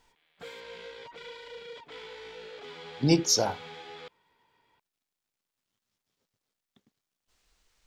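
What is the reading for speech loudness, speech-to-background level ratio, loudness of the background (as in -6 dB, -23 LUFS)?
-25.5 LUFS, 19.0 dB, -44.5 LUFS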